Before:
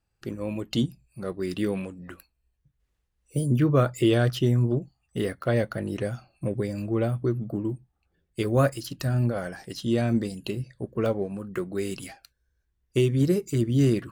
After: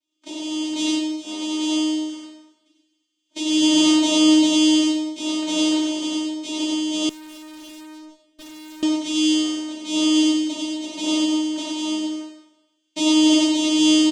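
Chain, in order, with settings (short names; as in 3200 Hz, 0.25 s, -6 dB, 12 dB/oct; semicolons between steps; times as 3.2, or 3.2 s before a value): careless resampling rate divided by 8×, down filtered, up zero stuff; vocoder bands 4, saw 309 Hz; on a send: echo 90 ms -3 dB; on the sum: plate-style reverb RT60 0.94 s, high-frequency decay 0.9×, DRR -6.5 dB; 7.09–8.83 tube stage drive 30 dB, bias 0.75; gain -9 dB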